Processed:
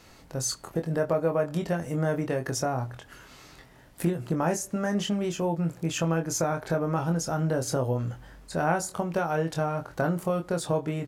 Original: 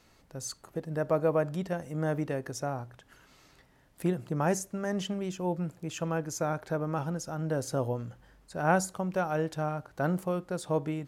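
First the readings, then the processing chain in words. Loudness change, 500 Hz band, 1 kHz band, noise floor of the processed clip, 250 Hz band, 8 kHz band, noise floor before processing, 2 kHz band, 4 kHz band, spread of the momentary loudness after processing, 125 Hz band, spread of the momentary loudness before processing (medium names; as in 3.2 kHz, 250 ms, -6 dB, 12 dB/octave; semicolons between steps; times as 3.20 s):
+3.5 dB, +3.0 dB, +2.5 dB, -53 dBFS, +4.0 dB, +6.5 dB, -63 dBFS, +3.0 dB, +7.0 dB, 4 LU, +4.5 dB, 9 LU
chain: compression 3:1, threshold -34 dBFS, peak gain reduction 11 dB; doubling 24 ms -5.5 dB; trim +8.5 dB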